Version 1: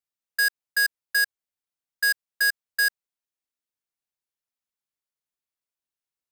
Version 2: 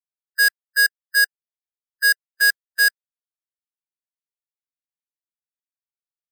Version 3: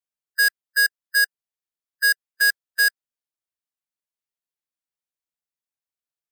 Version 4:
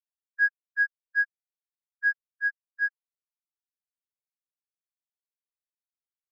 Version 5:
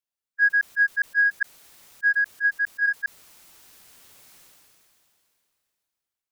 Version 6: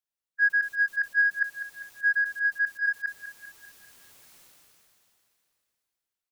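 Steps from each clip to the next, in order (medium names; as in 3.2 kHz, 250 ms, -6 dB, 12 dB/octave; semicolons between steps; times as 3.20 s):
spectral noise reduction 21 dB; trim +6 dB
compression, threshold -16 dBFS, peak gain reduction 2 dB
peak limiter -17 dBFS, peak gain reduction 5 dB; spectral contrast expander 4:1; trim +1.5 dB
chunks repeated in reverse 102 ms, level -7 dB; decay stretcher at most 21 dB/s; trim +3 dB
feedback delay 198 ms, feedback 54%, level -12 dB; trim -3 dB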